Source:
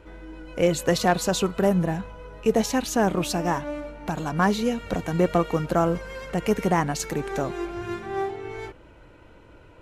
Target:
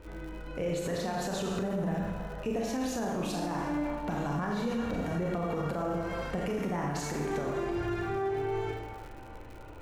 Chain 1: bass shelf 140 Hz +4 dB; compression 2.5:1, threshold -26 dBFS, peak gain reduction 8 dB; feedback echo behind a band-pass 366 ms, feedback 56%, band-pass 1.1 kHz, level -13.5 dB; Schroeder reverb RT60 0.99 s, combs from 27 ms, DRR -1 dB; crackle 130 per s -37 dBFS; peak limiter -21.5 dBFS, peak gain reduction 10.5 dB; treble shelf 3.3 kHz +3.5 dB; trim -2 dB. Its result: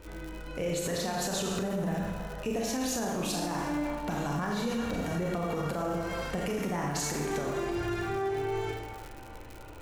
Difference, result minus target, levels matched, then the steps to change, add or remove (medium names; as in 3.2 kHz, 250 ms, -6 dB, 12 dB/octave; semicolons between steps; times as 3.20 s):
8 kHz band +7.0 dB
change: treble shelf 3.3 kHz -6 dB